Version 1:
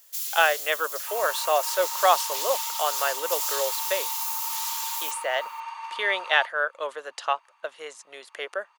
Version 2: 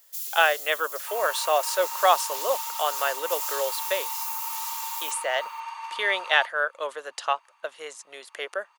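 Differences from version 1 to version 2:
first sound −7.5 dB
master: add high-shelf EQ 7,100 Hz +6 dB

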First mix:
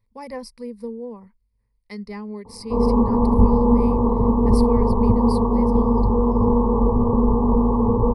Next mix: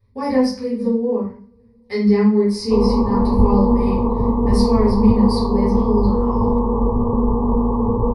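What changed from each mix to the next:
reverb: on, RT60 0.50 s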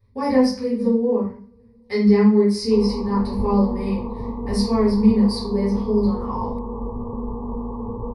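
background −11.0 dB

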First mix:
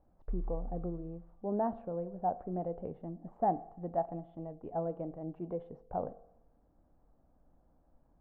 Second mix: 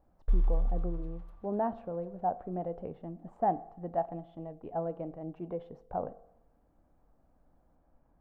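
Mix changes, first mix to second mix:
background +11.5 dB
master: remove low-pass filter 1,100 Hz 6 dB per octave

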